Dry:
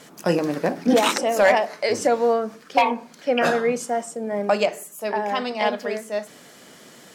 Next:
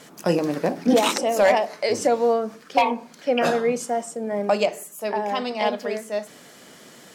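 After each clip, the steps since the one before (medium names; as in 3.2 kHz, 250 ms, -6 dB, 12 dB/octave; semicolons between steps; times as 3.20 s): dynamic bell 1.6 kHz, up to -5 dB, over -35 dBFS, Q 1.6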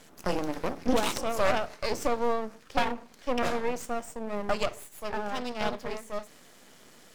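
half-wave rectifier; trim -4 dB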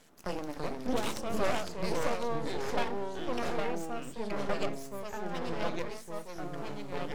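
ever faster or slower copies 285 ms, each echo -3 st, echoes 3; trim -7 dB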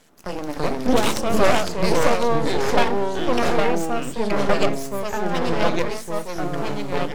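level rider gain up to 9 dB; trim +4.5 dB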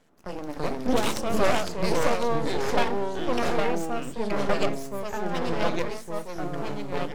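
tape noise reduction on one side only decoder only; trim -5.5 dB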